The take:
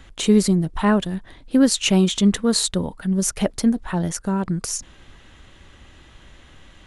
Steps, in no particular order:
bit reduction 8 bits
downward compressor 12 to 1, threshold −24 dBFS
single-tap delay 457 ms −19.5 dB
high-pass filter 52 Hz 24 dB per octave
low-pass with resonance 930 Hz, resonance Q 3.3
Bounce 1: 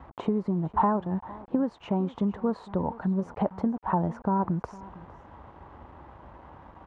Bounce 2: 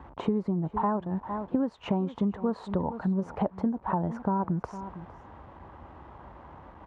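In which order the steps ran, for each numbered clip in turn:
high-pass filter, then downward compressor, then single-tap delay, then bit reduction, then low-pass with resonance
single-tap delay, then bit reduction, then low-pass with resonance, then downward compressor, then high-pass filter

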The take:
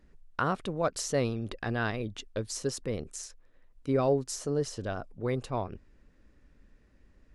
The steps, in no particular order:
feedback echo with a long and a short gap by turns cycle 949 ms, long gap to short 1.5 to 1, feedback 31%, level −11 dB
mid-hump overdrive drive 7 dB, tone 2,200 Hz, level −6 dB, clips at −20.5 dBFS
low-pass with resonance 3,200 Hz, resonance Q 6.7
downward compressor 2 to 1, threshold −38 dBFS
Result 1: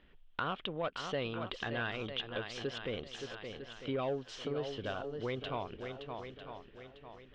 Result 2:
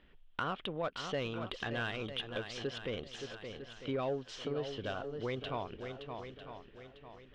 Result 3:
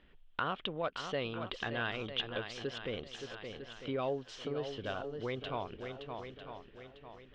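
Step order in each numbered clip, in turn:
feedback echo with a long and a short gap by turns, then mid-hump overdrive, then low-pass with resonance, then downward compressor
low-pass with resonance, then mid-hump overdrive, then feedback echo with a long and a short gap by turns, then downward compressor
feedback echo with a long and a short gap by turns, then downward compressor, then mid-hump overdrive, then low-pass with resonance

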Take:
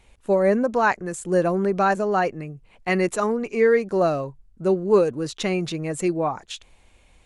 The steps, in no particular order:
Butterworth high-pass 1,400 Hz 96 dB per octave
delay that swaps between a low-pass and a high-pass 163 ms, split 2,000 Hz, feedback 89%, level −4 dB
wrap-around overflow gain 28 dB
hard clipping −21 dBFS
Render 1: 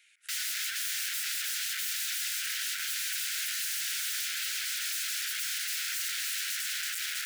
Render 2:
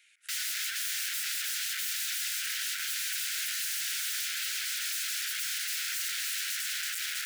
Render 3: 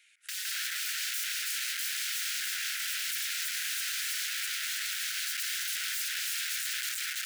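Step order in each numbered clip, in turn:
delay that swaps between a low-pass and a high-pass, then wrap-around overflow, then hard clipping, then Butterworth high-pass
delay that swaps between a low-pass and a high-pass, then wrap-around overflow, then Butterworth high-pass, then hard clipping
hard clipping, then delay that swaps between a low-pass and a high-pass, then wrap-around overflow, then Butterworth high-pass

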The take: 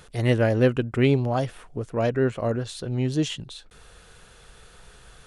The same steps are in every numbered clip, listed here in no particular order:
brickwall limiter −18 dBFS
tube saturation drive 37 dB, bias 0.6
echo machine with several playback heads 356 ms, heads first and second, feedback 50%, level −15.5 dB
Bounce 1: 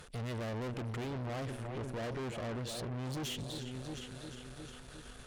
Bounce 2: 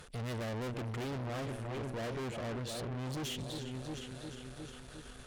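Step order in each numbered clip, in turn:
brickwall limiter, then echo machine with several playback heads, then tube saturation
echo machine with several playback heads, then tube saturation, then brickwall limiter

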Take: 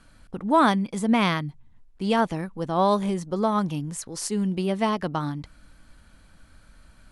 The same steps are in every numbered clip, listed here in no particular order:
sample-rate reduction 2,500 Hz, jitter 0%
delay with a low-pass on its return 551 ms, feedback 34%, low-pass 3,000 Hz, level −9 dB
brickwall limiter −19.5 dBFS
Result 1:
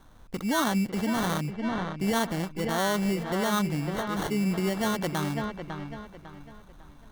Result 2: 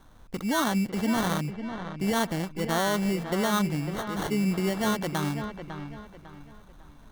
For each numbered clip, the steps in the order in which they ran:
sample-rate reduction, then delay with a low-pass on its return, then brickwall limiter
sample-rate reduction, then brickwall limiter, then delay with a low-pass on its return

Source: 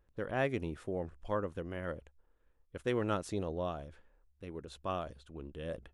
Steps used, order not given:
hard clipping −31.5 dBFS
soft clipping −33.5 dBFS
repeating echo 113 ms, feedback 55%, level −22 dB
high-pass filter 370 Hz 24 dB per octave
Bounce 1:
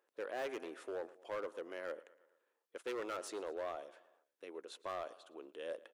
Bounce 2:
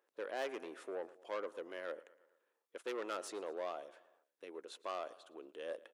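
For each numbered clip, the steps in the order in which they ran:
repeating echo, then hard clipping, then high-pass filter, then soft clipping
repeating echo, then soft clipping, then hard clipping, then high-pass filter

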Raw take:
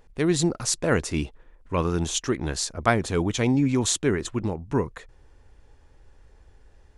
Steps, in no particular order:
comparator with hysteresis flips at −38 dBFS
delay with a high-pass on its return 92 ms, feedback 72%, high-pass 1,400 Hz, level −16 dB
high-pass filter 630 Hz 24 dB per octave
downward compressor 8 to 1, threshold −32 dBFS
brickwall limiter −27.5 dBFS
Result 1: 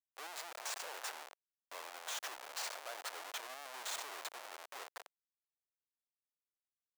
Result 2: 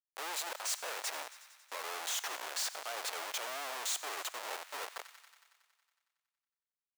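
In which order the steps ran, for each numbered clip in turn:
delay with a high-pass on its return, then brickwall limiter, then downward compressor, then comparator with hysteresis, then high-pass filter
comparator with hysteresis, then high-pass filter, then downward compressor, then delay with a high-pass on its return, then brickwall limiter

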